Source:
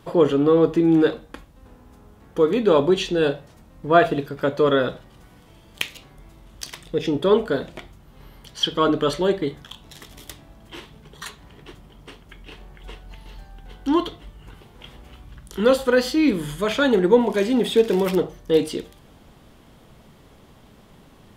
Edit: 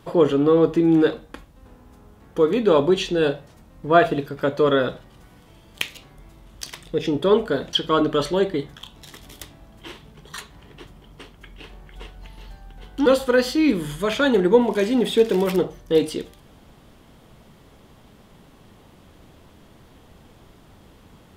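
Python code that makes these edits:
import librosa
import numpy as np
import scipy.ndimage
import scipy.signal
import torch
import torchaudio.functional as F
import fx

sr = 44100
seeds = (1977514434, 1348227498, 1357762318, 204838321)

y = fx.edit(x, sr, fx.cut(start_s=7.73, length_s=0.88),
    fx.cut(start_s=13.94, length_s=1.71), tone=tone)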